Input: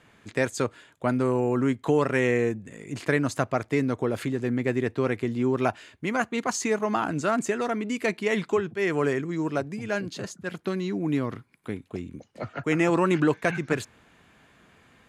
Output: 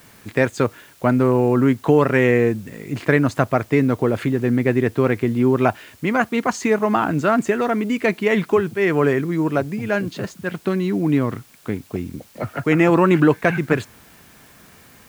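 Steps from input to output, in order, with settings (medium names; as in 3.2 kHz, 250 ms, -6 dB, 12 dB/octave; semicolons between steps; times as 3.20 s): tone controls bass +2 dB, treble -10 dB; in parallel at -7.5 dB: word length cut 8-bit, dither triangular; on the sum: trim +4 dB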